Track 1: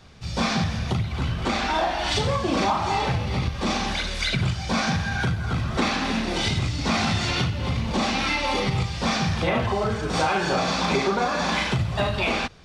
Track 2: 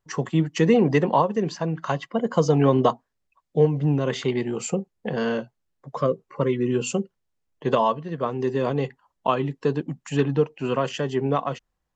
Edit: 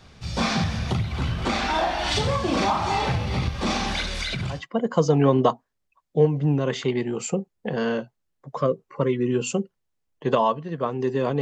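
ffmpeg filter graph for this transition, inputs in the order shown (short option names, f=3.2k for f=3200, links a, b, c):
-filter_complex "[0:a]asettb=1/sr,asplit=3[a][b][c];[a]atrim=end=4.054[d];[b]atrim=start=4.05:end=4.62,asetpts=PTS-STARTPTS,afade=t=in:d=0.004:c=qsin,afade=t=out:st=0.566:d=0.004:c=qsin,acompressor=threshold=-24dB:ratio=6:attack=3.2:release=140:knee=1:detection=peak[e];[c]atrim=start=4.616[f];[d][e]acrossfade=d=0.004:c1=hsin:c2=qsin[g];[g][f]acrossfade=d=0.004:c1=qsin:c2=hsin,apad=whole_dur=11.41,atrim=end=11.41,atrim=end=4.62,asetpts=PTS-STARTPTS[h];[1:a]atrim=start=1.88:end=8.81,asetpts=PTS-STARTPTS[i];[h][i]acrossfade=d=0.14:c1=tri:c2=tri"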